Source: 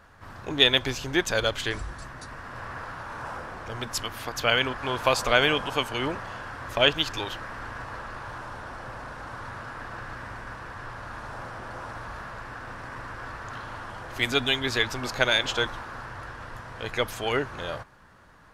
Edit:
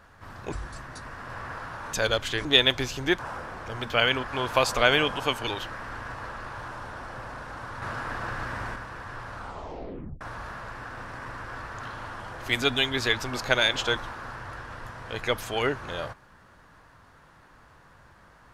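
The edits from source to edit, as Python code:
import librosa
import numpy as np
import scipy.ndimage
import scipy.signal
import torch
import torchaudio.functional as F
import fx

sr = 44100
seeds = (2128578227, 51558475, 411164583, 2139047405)

y = fx.edit(x, sr, fx.swap(start_s=0.52, length_s=0.74, other_s=1.78, other_length_s=1.41),
    fx.cut(start_s=3.9, length_s=0.5),
    fx.cut(start_s=5.97, length_s=1.2),
    fx.clip_gain(start_s=9.52, length_s=0.94, db=5.0),
    fx.tape_stop(start_s=11.05, length_s=0.86), tone=tone)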